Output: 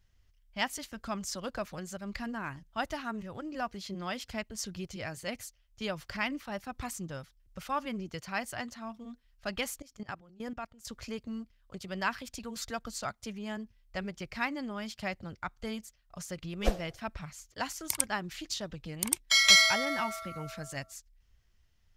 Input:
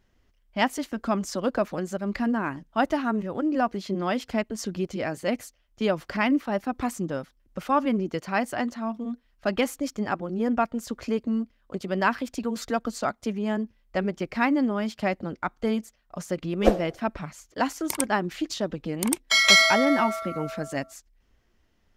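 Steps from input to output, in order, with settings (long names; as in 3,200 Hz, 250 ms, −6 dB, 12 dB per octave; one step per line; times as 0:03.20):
drawn EQ curve 110 Hz 0 dB, 270 Hz −16 dB, 4,900 Hz −1 dB
0:09.82–0:10.85: output level in coarse steps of 19 dB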